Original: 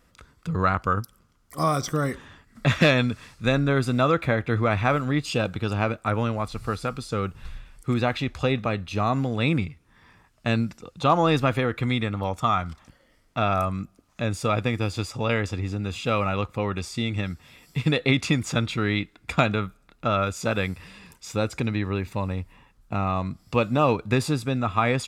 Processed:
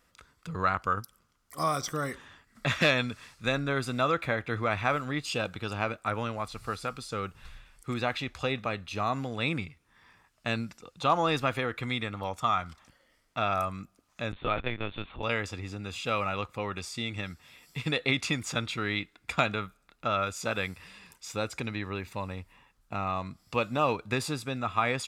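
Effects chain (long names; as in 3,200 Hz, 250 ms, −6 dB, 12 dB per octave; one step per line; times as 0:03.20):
low-shelf EQ 500 Hz −8.5 dB
0:14.32–0:15.23: linear-prediction vocoder at 8 kHz pitch kept
level −2.5 dB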